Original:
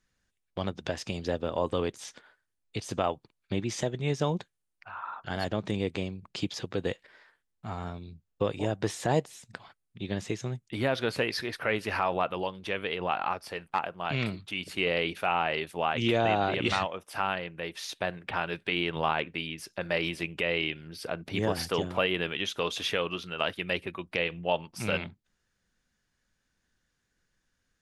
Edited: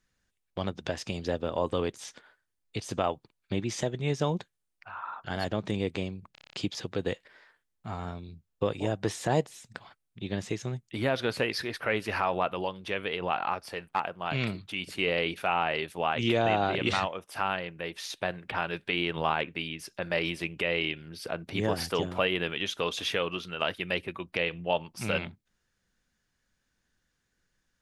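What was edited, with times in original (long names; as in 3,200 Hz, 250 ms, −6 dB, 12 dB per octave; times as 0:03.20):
0:06.32: stutter 0.03 s, 8 plays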